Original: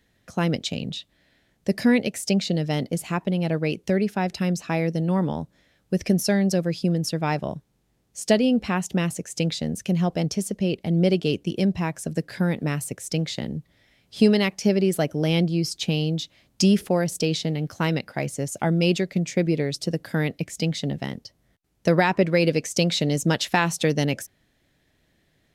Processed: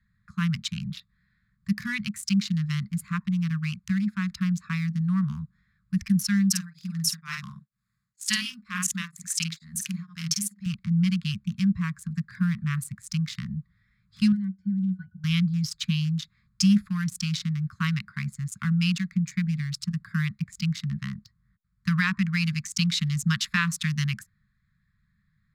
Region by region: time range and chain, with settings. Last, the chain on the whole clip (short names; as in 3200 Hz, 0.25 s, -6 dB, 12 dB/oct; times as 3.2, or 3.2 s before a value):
6.5–10.66 tilt +3 dB/oct + doubler 49 ms -4 dB + beating tremolo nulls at 2.1 Hz
14.32–15.24 high shelf 5300 Hz +7.5 dB + octave resonator F#, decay 0.12 s
whole clip: Wiener smoothing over 15 samples; Chebyshev band-stop 210–1100 Hz, order 5